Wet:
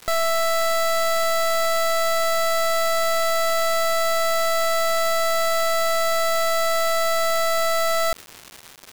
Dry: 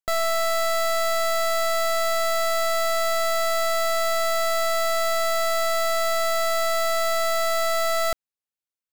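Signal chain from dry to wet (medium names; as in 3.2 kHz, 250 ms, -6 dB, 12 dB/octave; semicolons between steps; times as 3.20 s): crackle 360 per s -29 dBFS; trim +2 dB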